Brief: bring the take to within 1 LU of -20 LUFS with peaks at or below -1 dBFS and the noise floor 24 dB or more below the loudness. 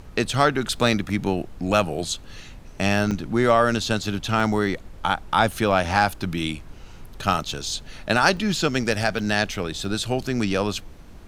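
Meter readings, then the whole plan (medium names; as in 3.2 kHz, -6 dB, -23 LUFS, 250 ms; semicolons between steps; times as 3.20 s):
dropouts 7; longest dropout 1.8 ms; noise floor -42 dBFS; noise floor target -47 dBFS; loudness -23.0 LUFS; peak level -2.5 dBFS; loudness target -20.0 LUFS
-> interpolate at 0.87/3.11/4.40/5.52/8.37/9.19/9.85 s, 1.8 ms; noise print and reduce 6 dB; trim +3 dB; peak limiter -1 dBFS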